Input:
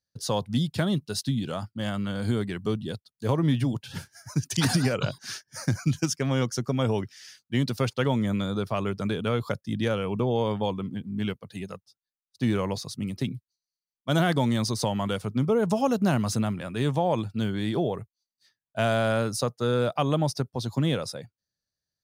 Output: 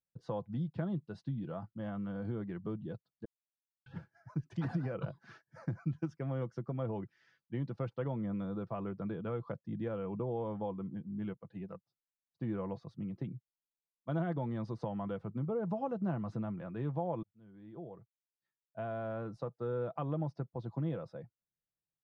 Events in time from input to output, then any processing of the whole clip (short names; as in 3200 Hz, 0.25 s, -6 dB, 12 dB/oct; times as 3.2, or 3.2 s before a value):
3.25–3.86 mute
17.23–20.06 fade in
whole clip: LPF 1200 Hz 12 dB/oct; comb 6 ms, depth 42%; compressor 1.5:1, threshold -31 dBFS; gain -8 dB